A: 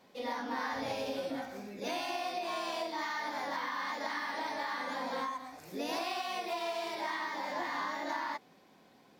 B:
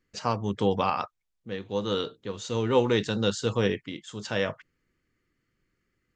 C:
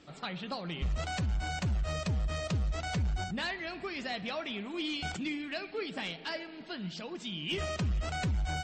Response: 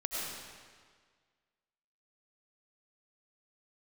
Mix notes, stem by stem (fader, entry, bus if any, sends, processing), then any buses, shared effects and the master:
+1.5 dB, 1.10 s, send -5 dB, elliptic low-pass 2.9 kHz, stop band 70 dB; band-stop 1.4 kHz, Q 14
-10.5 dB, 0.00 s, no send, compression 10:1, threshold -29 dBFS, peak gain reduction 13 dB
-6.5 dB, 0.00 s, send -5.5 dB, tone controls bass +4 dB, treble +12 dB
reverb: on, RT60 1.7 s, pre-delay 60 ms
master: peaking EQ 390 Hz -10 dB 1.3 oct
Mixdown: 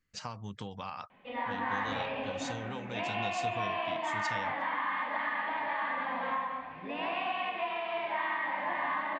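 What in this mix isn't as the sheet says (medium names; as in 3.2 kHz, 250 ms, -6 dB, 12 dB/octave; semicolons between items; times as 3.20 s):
stem B -10.5 dB -> -4.0 dB; stem C: muted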